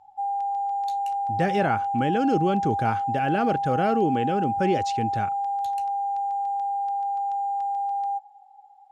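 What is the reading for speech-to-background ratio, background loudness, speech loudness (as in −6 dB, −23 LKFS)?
1.0 dB, −27.0 LKFS, −26.0 LKFS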